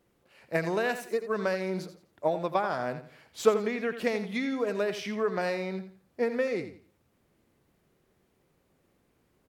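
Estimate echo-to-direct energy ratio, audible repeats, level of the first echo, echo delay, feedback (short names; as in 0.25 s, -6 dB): -10.5 dB, 3, -11.0 dB, 85 ms, 28%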